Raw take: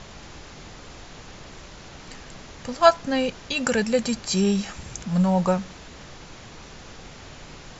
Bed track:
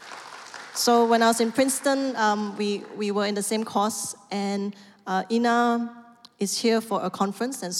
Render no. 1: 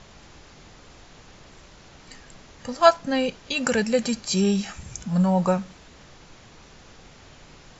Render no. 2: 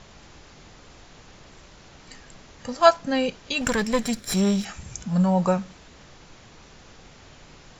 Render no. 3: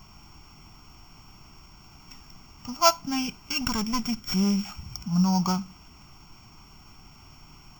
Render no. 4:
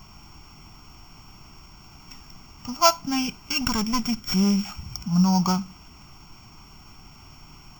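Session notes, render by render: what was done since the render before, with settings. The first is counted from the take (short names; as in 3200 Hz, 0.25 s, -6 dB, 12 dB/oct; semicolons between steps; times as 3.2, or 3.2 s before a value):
noise print and reduce 6 dB
3.61–4.65 minimum comb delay 0.54 ms
sample sorter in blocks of 8 samples; fixed phaser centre 2600 Hz, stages 8
gain +3 dB; limiter -3 dBFS, peak gain reduction 2.5 dB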